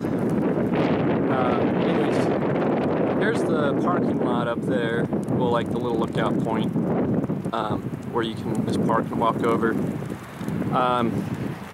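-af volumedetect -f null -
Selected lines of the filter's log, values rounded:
mean_volume: -22.9 dB
max_volume: -8.5 dB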